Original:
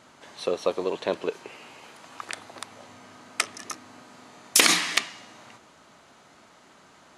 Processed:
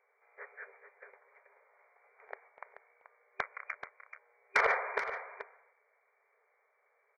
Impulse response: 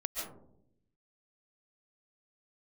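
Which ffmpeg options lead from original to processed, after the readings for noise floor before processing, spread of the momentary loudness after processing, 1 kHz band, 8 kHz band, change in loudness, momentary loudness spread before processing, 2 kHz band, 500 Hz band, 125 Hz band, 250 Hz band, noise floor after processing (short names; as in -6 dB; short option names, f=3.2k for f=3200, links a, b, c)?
-55 dBFS, 25 LU, -3.5 dB, -34.0 dB, -9.5 dB, 23 LU, -6.0 dB, -11.5 dB, under -20 dB, -26.0 dB, -75 dBFS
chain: -filter_complex "[0:a]afftfilt=real='real(if(lt(b,736),b+184*(1-2*mod(floor(b/184),2)),b),0)':imag='imag(if(lt(b,736),b+184*(1-2*mod(floor(b/184),2)),b),0)':win_size=2048:overlap=0.75,afftfilt=real='re*between(b*sr/4096,390,2400)':imag='im*between(b*sr/4096,390,2400)':win_size=4096:overlap=0.75,agate=range=-6dB:threshold=-58dB:ratio=16:detection=peak,asoftclip=type=tanh:threshold=-17.5dB,asplit=2[a][b];[b]aecho=0:1:432:0.299[c];[a][c]amix=inputs=2:normalize=0"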